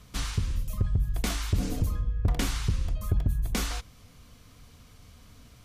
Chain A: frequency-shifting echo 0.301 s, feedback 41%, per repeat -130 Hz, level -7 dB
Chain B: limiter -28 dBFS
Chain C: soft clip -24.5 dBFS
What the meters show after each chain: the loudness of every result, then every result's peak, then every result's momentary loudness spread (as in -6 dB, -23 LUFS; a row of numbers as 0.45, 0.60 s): -29.5, -37.5, -33.5 LUFS; -14.0, -28.0, -24.5 dBFS; 12, 17, 3 LU